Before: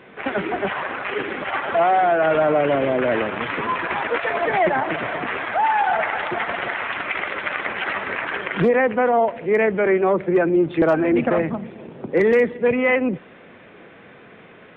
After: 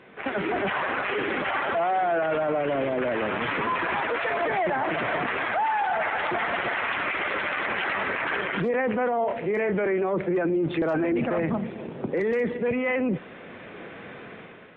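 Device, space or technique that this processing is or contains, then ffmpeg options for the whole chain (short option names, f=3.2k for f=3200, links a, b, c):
low-bitrate web radio: -filter_complex "[0:a]asettb=1/sr,asplit=3[a][b][c];[a]atrim=end=9.214[d];[b]atrim=start=9.21:end=9.74,asetpts=PTS-STARTPTS,afade=t=in:d=0.004:c=qsin,afade=t=out:st=0.526:d=0.004:c=qsin,asplit=2[e][f];[f]adelay=29,volume=-8dB[g];[e][g]amix=inputs=2:normalize=0,atrim=end_sample=23373[h];[c]atrim=start=9.736[i];[d][h]acrossfade=d=0.004:c1=hsin:c2=qsin[j];[j][i]acrossfade=d=0.004:c1=qsin:c2=hsin,dynaudnorm=f=140:g=7:m=9dB,alimiter=limit=-13.5dB:level=0:latency=1:release=16,volume=-4.5dB" -ar 44100 -c:a libmp3lame -b:a 48k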